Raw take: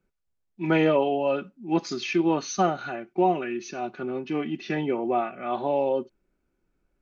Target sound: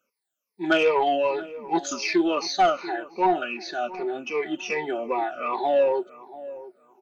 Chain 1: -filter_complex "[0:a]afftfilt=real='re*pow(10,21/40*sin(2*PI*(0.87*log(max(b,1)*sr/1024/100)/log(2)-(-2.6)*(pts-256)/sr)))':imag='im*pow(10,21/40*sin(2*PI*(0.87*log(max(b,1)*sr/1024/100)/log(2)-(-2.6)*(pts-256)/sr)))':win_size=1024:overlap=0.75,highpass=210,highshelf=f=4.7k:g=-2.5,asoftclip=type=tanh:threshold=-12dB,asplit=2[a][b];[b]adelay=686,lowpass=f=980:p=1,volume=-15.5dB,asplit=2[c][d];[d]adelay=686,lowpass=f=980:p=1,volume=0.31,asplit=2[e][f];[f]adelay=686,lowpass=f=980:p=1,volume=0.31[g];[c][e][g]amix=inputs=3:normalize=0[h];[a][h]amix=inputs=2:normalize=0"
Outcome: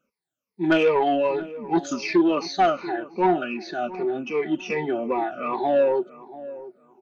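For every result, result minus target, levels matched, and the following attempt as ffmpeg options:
8000 Hz band -6.5 dB; 250 Hz band +3.0 dB
-filter_complex "[0:a]afftfilt=real='re*pow(10,21/40*sin(2*PI*(0.87*log(max(b,1)*sr/1024/100)/log(2)-(-2.6)*(pts-256)/sr)))':imag='im*pow(10,21/40*sin(2*PI*(0.87*log(max(b,1)*sr/1024/100)/log(2)-(-2.6)*(pts-256)/sr)))':win_size=1024:overlap=0.75,highpass=210,highshelf=f=4.7k:g=6,asoftclip=type=tanh:threshold=-12dB,asplit=2[a][b];[b]adelay=686,lowpass=f=980:p=1,volume=-15.5dB,asplit=2[c][d];[d]adelay=686,lowpass=f=980:p=1,volume=0.31,asplit=2[e][f];[f]adelay=686,lowpass=f=980:p=1,volume=0.31[g];[c][e][g]amix=inputs=3:normalize=0[h];[a][h]amix=inputs=2:normalize=0"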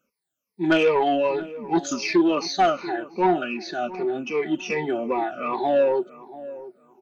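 250 Hz band +3.0 dB
-filter_complex "[0:a]afftfilt=real='re*pow(10,21/40*sin(2*PI*(0.87*log(max(b,1)*sr/1024/100)/log(2)-(-2.6)*(pts-256)/sr)))':imag='im*pow(10,21/40*sin(2*PI*(0.87*log(max(b,1)*sr/1024/100)/log(2)-(-2.6)*(pts-256)/sr)))':win_size=1024:overlap=0.75,highpass=430,highshelf=f=4.7k:g=6,asoftclip=type=tanh:threshold=-12dB,asplit=2[a][b];[b]adelay=686,lowpass=f=980:p=1,volume=-15.5dB,asplit=2[c][d];[d]adelay=686,lowpass=f=980:p=1,volume=0.31,asplit=2[e][f];[f]adelay=686,lowpass=f=980:p=1,volume=0.31[g];[c][e][g]amix=inputs=3:normalize=0[h];[a][h]amix=inputs=2:normalize=0"

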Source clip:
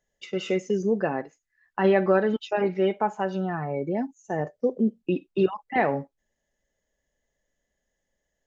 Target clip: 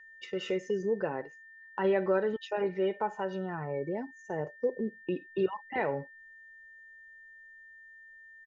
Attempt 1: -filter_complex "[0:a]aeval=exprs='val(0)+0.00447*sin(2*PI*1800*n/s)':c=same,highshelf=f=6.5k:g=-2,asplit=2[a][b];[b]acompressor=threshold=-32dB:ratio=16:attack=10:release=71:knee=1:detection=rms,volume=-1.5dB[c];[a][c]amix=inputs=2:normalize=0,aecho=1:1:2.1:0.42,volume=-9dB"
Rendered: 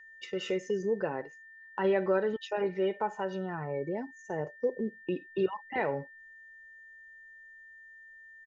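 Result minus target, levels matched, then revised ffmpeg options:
8000 Hz band +3.5 dB
-filter_complex "[0:a]aeval=exprs='val(0)+0.00447*sin(2*PI*1800*n/s)':c=same,highshelf=f=6.5k:g=-9,asplit=2[a][b];[b]acompressor=threshold=-32dB:ratio=16:attack=10:release=71:knee=1:detection=rms,volume=-1.5dB[c];[a][c]amix=inputs=2:normalize=0,aecho=1:1:2.1:0.42,volume=-9dB"

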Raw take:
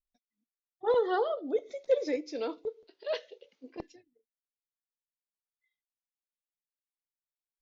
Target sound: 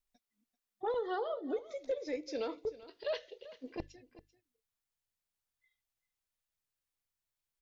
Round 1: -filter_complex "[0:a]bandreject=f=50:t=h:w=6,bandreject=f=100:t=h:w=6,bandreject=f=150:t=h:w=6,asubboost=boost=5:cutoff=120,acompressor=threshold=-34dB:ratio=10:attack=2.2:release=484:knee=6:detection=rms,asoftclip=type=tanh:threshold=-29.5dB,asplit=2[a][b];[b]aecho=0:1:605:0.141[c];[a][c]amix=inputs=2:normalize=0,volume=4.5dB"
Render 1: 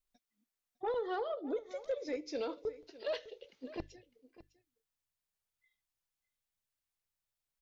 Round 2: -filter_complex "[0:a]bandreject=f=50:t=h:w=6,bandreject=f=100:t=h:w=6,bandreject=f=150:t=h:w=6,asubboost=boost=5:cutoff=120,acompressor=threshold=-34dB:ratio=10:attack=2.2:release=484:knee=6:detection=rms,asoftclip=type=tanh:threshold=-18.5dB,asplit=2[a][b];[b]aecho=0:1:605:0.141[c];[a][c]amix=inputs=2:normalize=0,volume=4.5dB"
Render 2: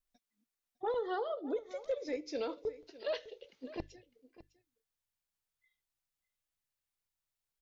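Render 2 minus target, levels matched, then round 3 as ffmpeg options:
echo 0.216 s late
-filter_complex "[0:a]bandreject=f=50:t=h:w=6,bandreject=f=100:t=h:w=6,bandreject=f=150:t=h:w=6,asubboost=boost=5:cutoff=120,acompressor=threshold=-34dB:ratio=10:attack=2.2:release=484:knee=6:detection=rms,asoftclip=type=tanh:threshold=-18.5dB,asplit=2[a][b];[b]aecho=0:1:389:0.141[c];[a][c]amix=inputs=2:normalize=0,volume=4.5dB"

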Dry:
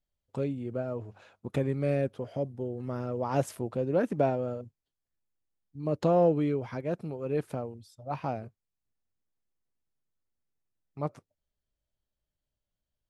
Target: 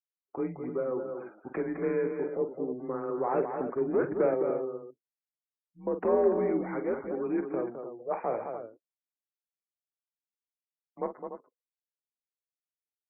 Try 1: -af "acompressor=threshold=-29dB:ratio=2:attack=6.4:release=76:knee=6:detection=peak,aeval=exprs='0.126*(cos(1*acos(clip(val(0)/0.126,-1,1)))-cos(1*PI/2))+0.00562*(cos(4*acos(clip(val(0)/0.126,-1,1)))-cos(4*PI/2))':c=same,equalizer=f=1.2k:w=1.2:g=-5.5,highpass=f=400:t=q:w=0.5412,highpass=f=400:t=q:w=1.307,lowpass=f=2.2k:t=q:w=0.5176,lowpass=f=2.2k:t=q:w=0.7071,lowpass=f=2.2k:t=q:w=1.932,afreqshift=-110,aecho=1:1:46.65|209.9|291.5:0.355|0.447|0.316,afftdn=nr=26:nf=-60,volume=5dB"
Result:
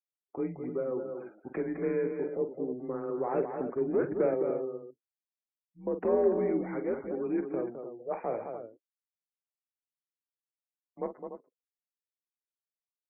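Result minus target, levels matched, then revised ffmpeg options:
1000 Hz band -3.0 dB
-af "acompressor=threshold=-29dB:ratio=2:attack=6.4:release=76:knee=6:detection=peak,aeval=exprs='0.126*(cos(1*acos(clip(val(0)/0.126,-1,1)))-cos(1*PI/2))+0.00562*(cos(4*acos(clip(val(0)/0.126,-1,1)))-cos(4*PI/2))':c=same,highpass=f=400:t=q:w=0.5412,highpass=f=400:t=q:w=1.307,lowpass=f=2.2k:t=q:w=0.5176,lowpass=f=2.2k:t=q:w=0.7071,lowpass=f=2.2k:t=q:w=1.932,afreqshift=-110,aecho=1:1:46.65|209.9|291.5:0.355|0.447|0.316,afftdn=nr=26:nf=-60,volume=5dB"

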